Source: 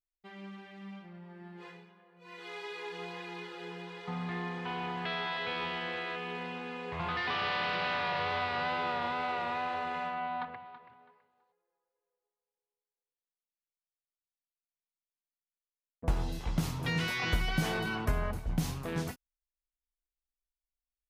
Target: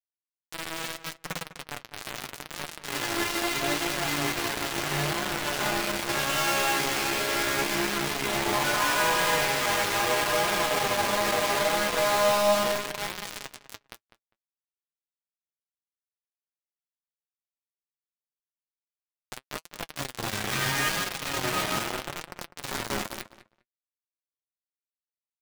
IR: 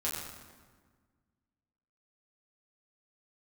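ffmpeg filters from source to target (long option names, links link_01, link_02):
-filter_complex "[0:a]aeval=exprs='val(0)+0.5*0.0178*sgn(val(0))':channel_layout=same,asetrate=36603,aresample=44100,alimiter=level_in=4dB:limit=-24dB:level=0:latency=1:release=87,volume=-4dB,highpass=160,lowpass=4800,asplit=2[link_01][link_02];[link_02]aecho=0:1:163.3|204.1|271.1:0.251|1|0.398[link_03];[link_01][link_03]amix=inputs=2:normalize=0,acrusher=bits=4:mix=0:aa=0.000001,flanger=delay=5.3:depth=4.4:regen=43:speed=0.76:shape=triangular,asplit=2[link_04][link_05];[link_05]adelay=201,lowpass=frequency=2900:poles=1,volume=-13.5dB,asplit=2[link_06][link_07];[link_07]adelay=201,lowpass=frequency=2900:poles=1,volume=0.16[link_08];[link_06][link_08]amix=inputs=2:normalize=0[link_09];[link_04][link_09]amix=inputs=2:normalize=0,volume=8dB"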